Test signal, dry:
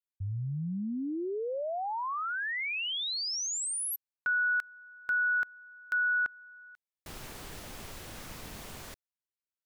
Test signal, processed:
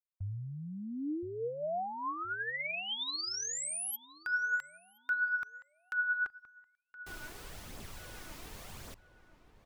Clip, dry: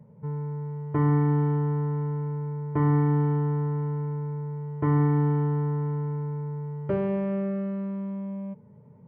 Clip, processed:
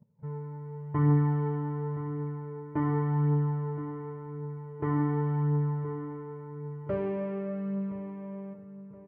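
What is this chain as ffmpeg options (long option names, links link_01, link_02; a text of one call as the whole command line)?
ffmpeg -i in.wav -filter_complex "[0:a]agate=range=-16dB:threshold=-47dB:ratio=16:release=136:detection=rms,flanger=delay=0.1:depth=3.3:regen=38:speed=0.9:shape=triangular,asplit=2[link_01][link_02];[link_02]adelay=1020,lowpass=frequency=1600:poles=1,volume=-13.5dB,asplit=2[link_03][link_04];[link_04]adelay=1020,lowpass=frequency=1600:poles=1,volume=0.41,asplit=2[link_05][link_06];[link_06]adelay=1020,lowpass=frequency=1600:poles=1,volume=0.41,asplit=2[link_07][link_08];[link_08]adelay=1020,lowpass=frequency=1600:poles=1,volume=0.41[link_09];[link_03][link_05][link_07][link_09]amix=inputs=4:normalize=0[link_10];[link_01][link_10]amix=inputs=2:normalize=0" out.wav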